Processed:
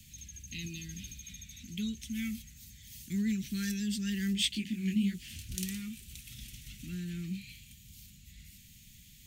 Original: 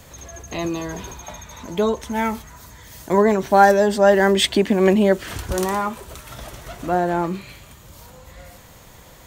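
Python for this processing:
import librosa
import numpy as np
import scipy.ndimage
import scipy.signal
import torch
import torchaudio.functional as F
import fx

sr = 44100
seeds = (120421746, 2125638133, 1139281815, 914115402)

y = scipy.signal.sosfilt(scipy.signal.cheby1(3, 1.0, [220.0, 2500.0], 'bandstop', fs=sr, output='sos'), x)
y = fx.low_shelf(y, sr, hz=360.0, db=-3.0)
y = fx.detune_double(y, sr, cents=47, at=(4.33, 5.56), fade=0.02)
y = F.gain(torch.from_numpy(y), -6.5).numpy()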